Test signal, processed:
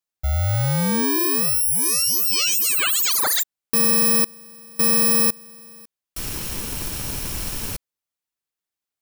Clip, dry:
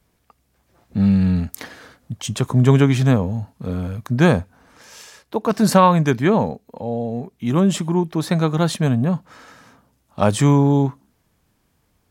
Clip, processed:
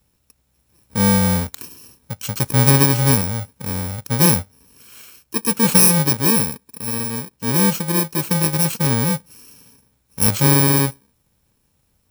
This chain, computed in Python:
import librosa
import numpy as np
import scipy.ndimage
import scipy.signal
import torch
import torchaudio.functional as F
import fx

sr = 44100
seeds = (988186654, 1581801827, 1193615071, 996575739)

y = fx.bit_reversed(x, sr, seeds[0], block=64)